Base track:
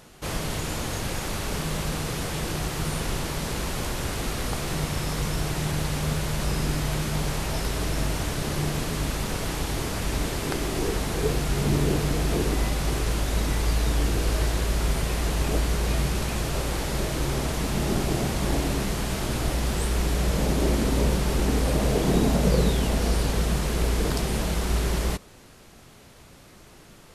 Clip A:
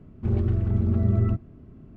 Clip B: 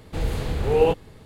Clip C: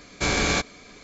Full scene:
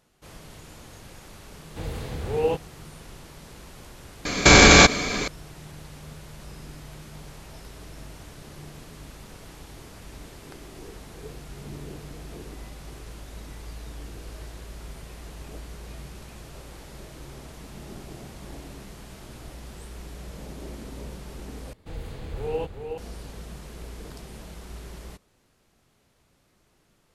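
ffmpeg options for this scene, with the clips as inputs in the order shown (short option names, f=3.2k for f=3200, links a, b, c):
-filter_complex "[2:a]asplit=2[a][b];[0:a]volume=-16dB[c];[a]highpass=48[d];[3:a]alimiter=level_in=21.5dB:limit=-1dB:release=50:level=0:latency=1[e];[b]aecho=1:1:368:0.531[f];[c]asplit=2[g][h];[g]atrim=end=21.734[i];[f]atrim=end=1.25,asetpts=PTS-STARTPTS,volume=-11dB[j];[h]atrim=start=22.976[k];[d]atrim=end=1.25,asetpts=PTS-STARTPTS,volume=-5.5dB,afade=t=in:d=0.004:c=hsin,afade=t=out:st=1.246:d=0.004:c=hsin,adelay=1630[l];[e]atrim=end=1.03,asetpts=PTS-STARTPTS,volume=-1.5dB,afade=t=in:d=0.004:c=hsin,afade=t=out:st=1.026:d=0.004:c=hsin,adelay=187425S[m];[i][j]acrossfade=d=0.004:c1=hsin:c2=hsin[n];[n][k]acrossfade=d=0.004:c1=hsin:c2=hsin[o];[o][l][m]amix=inputs=3:normalize=0"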